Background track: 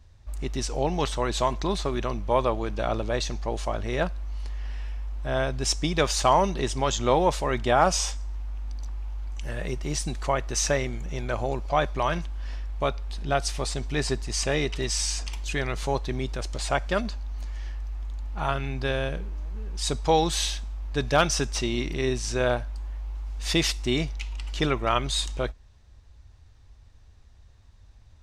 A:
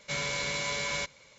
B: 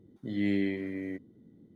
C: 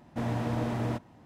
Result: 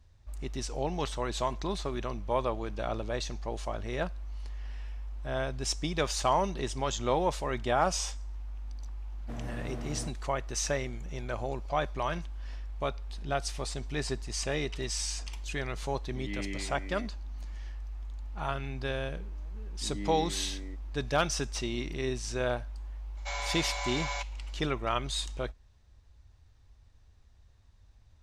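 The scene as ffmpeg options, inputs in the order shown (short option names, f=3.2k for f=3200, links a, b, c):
-filter_complex "[2:a]asplit=2[a][b];[0:a]volume=-6.5dB[c];[3:a]bandreject=f=920:w=8.8[d];[a]equalizer=f=2.6k:w=1.5:g=14[e];[1:a]highpass=f=780:t=q:w=6.7[f];[d]atrim=end=1.25,asetpts=PTS-STARTPTS,volume=-10dB,afade=t=in:d=0.004:c=hsin,afade=t=out:st=1.246:d=0.004:c=hsin,adelay=9120[g];[e]atrim=end=1.75,asetpts=PTS-STARTPTS,volume=-11dB,afade=t=in:d=0.004:c=hsin,afade=t=out:st=1.746:d=0.004:c=hsin,adelay=15890[h];[b]atrim=end=1.75,asetpts=PTS-STARTPTS,volume=-10dB,afade=t=in:d=0.004:c=hsin,afade=t=out:st=1.746:d=0.004:c=hsin,adelay=19580[i];[f]atrim=end=1.38,asetpts=PTS-STARTPTS,volume=-6dB,afade=t=in:d=0.004:c=hsin,afade=t=out:st=1.376:d=0.004:c=hsin,adelay=23170[j];[c][g][h][i][j]amix=inputs=5:normalize=0"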